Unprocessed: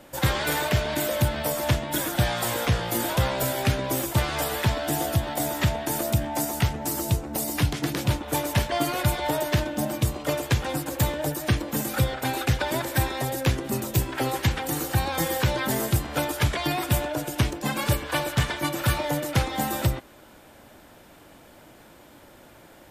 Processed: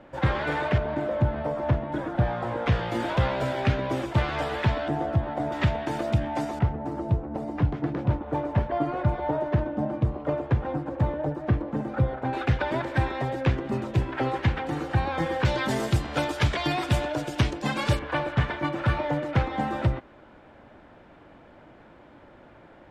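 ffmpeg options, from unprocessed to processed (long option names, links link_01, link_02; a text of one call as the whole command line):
ffmpeg -i in.wav -af "asetnsamples=nb_out_samples=441:pad=0,asendcmd='0.78 lowpass f 1200;2.66 lowpass f 2700;4.88 lowpass f 1400;5.52 lowpass f 2800;6.59 lowpass f 1100;12.33 lowpass f 2300;15.45 lowpass f 5100;17.99 lowpass f 2100',lowpass=2000" out.wav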